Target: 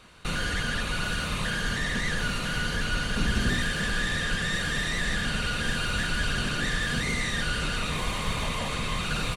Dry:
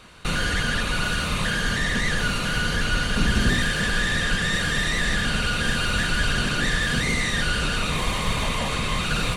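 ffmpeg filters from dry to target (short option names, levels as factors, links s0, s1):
-af "aecho=1:1:543:0.178,volume=0.562"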